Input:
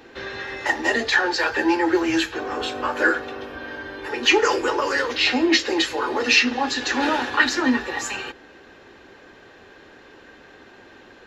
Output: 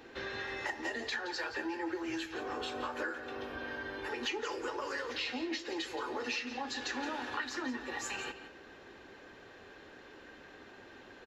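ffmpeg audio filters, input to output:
-filter_complex "[0:a]acompressor=threshold=-29dB:ratio=6,asplit=2[a][b];[b]aecho=0:1:172:0.251[c];[a][c]amix=inputs=2:normalize=0,volume=-6.5dB"

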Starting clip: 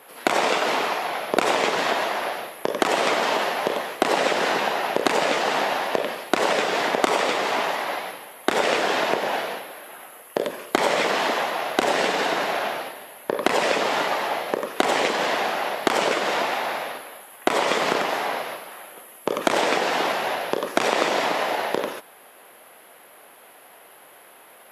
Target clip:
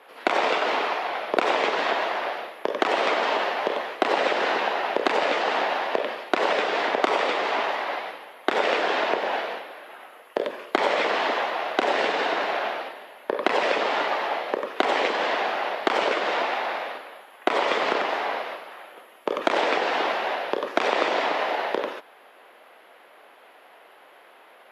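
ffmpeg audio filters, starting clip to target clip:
-filter_complex "[0:a]acrossover=split=240 4700:gain=0.141 1 0.126[a][b][c];[a][b][c]amix=inputs=3:normalize=0,volume=-1dB"

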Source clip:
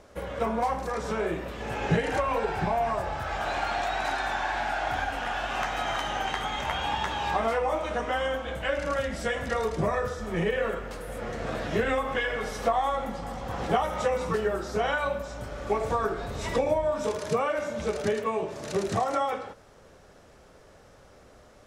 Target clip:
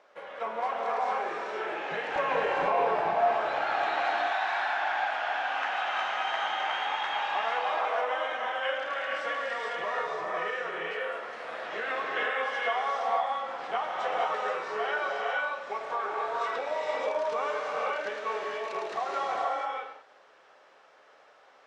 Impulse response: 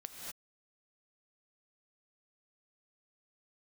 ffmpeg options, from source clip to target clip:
-filter_complex "[0:a]asetnsamples=n=441:p=0,asendcmd='2.16 highpass f 390;3.84 highpass f 790',highpass=670,lowpass=3.3k[a];[1:a]atrim=start_sample=2205,asetrate=22491,aresample=44100[b];[a][b]afir=irnorm=-1:irlink=0"

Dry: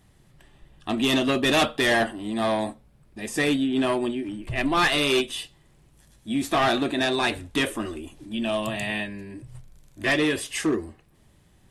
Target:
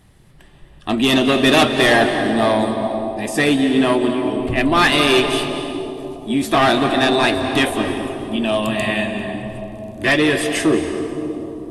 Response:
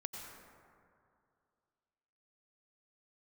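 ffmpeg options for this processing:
-filter_complex "[0:a]asplit=2[a][b];[b]equalizer=f=6.9k:t=o:w=0.49:g=-8[c];[1:a]atrim=start_sample=2205,asetrate=22491,aresample=44100[d];[c][d]afir=irnorm=-1:irlink=0,volume=2dB[e];[a][e]amix=inputs=2:normalize=0"

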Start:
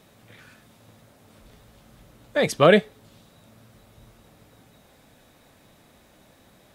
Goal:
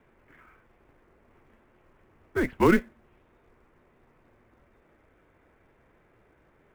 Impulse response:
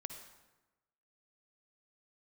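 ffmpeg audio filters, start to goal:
-filter_complex "[0:a]highpass=f=210:t=q:w=0.5412,highpass=f=210:t=q:w=1.307,lowpass=f=2.6k:t=q:w=0.5176,lowpass=f=2.6k:t=q:w=0.7071,lowpass=f=2.6k:t=q:w=1.932,afreqshift=-200,asplit=2[a][b];[b]acrusher=bits=3:mode=log:mix=0:aa=0.000001,volume=-5.5dB[c];[a][c]amix=inputs=2:normalize=0,volume=-8dB"

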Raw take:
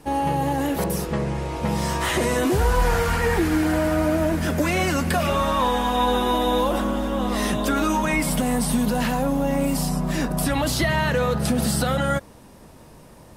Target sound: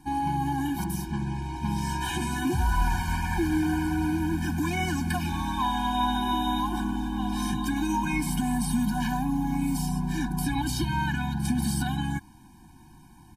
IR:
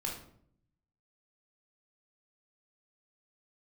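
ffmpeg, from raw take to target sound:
-filter_complex "[0:a]asplit=2[a][b];[b]asetrate=22050,aresample=44100,atempo=2,volume=-18dB[c];[a][c]amix=inputs=2:normalize=0,afftfilt=real='re*eq(mod(floor(b*sr/1024/360),2),0)':imag='im*eq(mod(floor(b*sr/1024/360),2),0)':win_size=1024:overlap=0.75,volume=-4dB"

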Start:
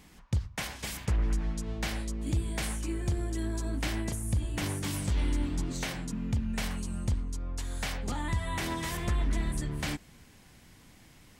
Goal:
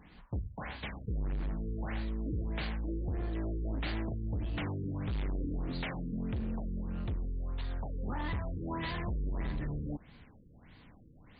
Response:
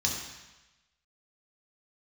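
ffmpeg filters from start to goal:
-af "bandreject=f=370:w=12,volume=31.5dB,asoftclip=hard,volume=-31.5dB,afftfilt=real='re*lt(b*sr/1024,500*pow(4900/500,0.5+0.5*sin(2*PI*1.6*pts/sr)))':imag='im*lt(b*sr/1024,500*pow(4900/500,0.5+0.5*sin(2*PI*1.6*pts/sr)))':win_size=1024:overlap=0.75"

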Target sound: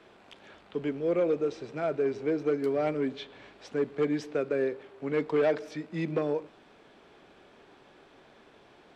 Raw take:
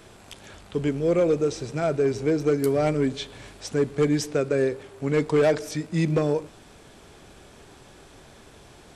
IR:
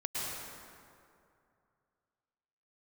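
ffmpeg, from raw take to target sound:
-filter_complex "[0:a]asettb=1/sr,asplit=3[a][b][c];[a]atrim=end=3.144[d];[b]atrim=start=3.14:end=3.58,asetpts=PTS-STARTPTS,afade=t=in:d=0.004:c=qsin,afade=t=out:st=0.436:d=0.004:c=qsin,lowpass=8.3k[e];[c]atrim=start=3.576[f];[d][e]acrossfade=d=0.004:c1=hsin:c2=qsin[g];[g][f]acrossfade=d=0.004:c1=qsin:c2=hsin,acrossover=split=190 4100:gain=0.178 1 0.1[h][i][j];[h][i][j]amix=inputs=3:normalize=0,volume=-5dB"

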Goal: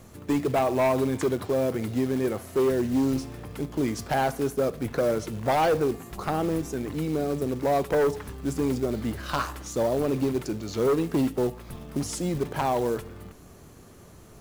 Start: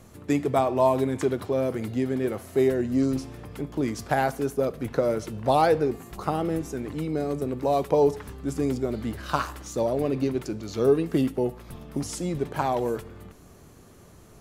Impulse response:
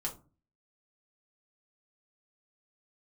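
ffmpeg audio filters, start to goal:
-af "aeval=exprs='0.376*(cos(1*acos(clip(val(0)/0.376,-1,1)))-cos(1*PI/2))+0.133*(cos(5*acos(clip(val(0)/0.376,-1,1)))-cos(5*PI/2))+0.015*(cos(7*acos(clip(val(0)/0.376,-1,1)))-cos(7*PI/2))':c=same,acrusher=bits=5:mode=log:mix=0:aa=0.000001,volume=-6.5dB"

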